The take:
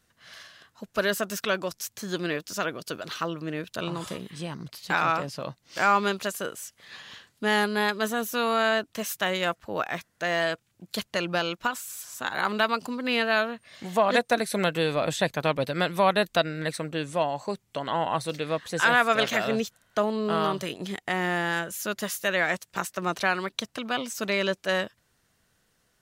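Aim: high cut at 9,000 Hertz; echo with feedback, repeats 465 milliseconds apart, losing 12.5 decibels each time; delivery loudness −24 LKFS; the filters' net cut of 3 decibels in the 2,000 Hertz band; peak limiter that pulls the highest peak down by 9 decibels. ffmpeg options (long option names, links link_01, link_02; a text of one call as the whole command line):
ffmpeg -i in.wav -af "lowpass=9000,equalizer=frequency=2000:width_type=o:gain=-4,alimiter=limit=-19.5dB:level=0:latency=1,aecho=1:1:465|930|1395:0.237|0.0569|0.0137,volume=7.5dB" out.wav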